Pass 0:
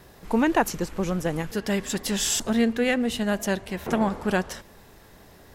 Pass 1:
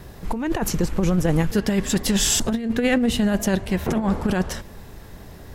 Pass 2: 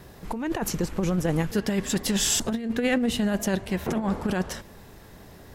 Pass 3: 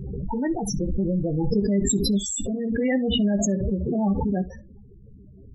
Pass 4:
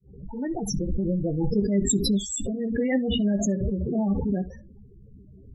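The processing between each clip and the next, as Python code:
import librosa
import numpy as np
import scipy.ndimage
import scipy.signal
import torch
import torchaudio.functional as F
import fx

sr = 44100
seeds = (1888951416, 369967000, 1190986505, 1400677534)

y1 = fx.low_shelf(x, sr, hz=210.0, db=10.0)
y1 = fx.over_compress(y1, sr, threshold_db=-21.0, ratio=-0.5)
y1 = y1 * librosa.db_to_amplitude(2.5)
y2 = fx.low_shelf(y1, sr, hz=85.0, db=-8.5)
y2 = y2 * librosa.db_to_amplitude(-3.5)
y3 = fx.spec_topn(y2, sr, count=8)
y3 = fx.room_early_taps(y3, sr, ms=(15, 65), db=(-5.5, -17.5))
y3 = fx.pre_swell(y3, sr, db_per_s=23.0)
y4 = fx.fade_in_head(y3, sr, length_s=0.63)
y4 = fx.rotary(y4, sr, hz=6.7)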